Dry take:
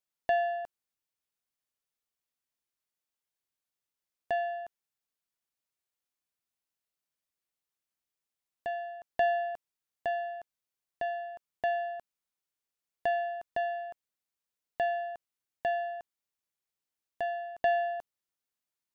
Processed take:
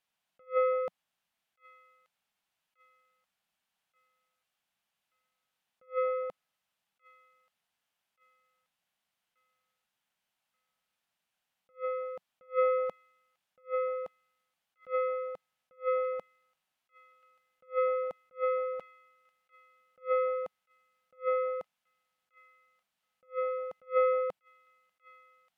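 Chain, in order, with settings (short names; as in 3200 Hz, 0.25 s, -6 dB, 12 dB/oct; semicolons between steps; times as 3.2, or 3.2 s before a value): ten-band EQ 250 Hz +10 dB, 500 Hz -4 dB, 1000 Hz +10 dB, 2000 Hz +6 dB, 4000 Hz +9 dB; speed mistake 45 rpm record played at 33 rpm; on a send: thin delay 1.181 s, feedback 34%, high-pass 2200 Hz, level -19 dB; on the sum: attack slew limiter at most 320 dB/s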